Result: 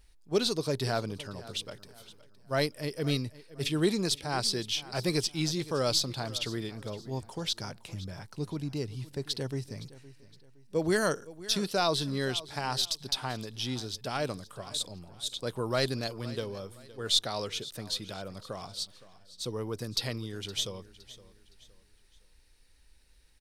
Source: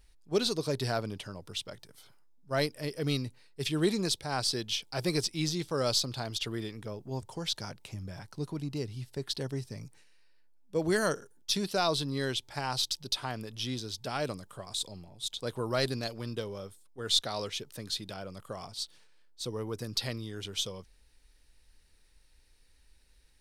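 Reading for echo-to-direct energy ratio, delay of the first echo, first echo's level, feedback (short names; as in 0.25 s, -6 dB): -17.5 dB, 0.515 s, -18.0 dB, 35%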